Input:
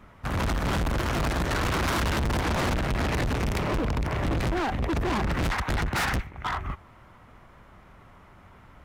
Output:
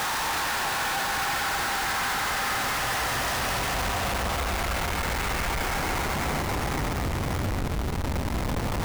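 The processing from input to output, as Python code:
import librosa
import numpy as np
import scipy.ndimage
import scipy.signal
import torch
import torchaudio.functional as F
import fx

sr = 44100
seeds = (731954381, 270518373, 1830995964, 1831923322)

p1 = fx.low_shelf_res(x, sr, hz=510.0, db=-13.5, q=1.5)
p2 = fx.paulstretch(p1, sr, seeds[0], factor=30.0, window_s=0.1, from_s=6.04)
p3 = fx.rider(p2, sr, range_db=4, speed_s=0.5)
p4 = p2 + (p3 * 10.0 ** (-2.0 / 20.0))
p5 = fx.dynamic_eq(p4, sr, hz=2100.0, q=0.89, threshold_db=-37.0, ratio=4.0, max_db=-3)
p6 = fx.schmitt(p5, sr, flips_db=-38.5)
y = p6 + fx.echo_alternate(p6, sr, ms=260, hz=2300.0, feedback_pct=61, wet_db=-8.5, dry=0)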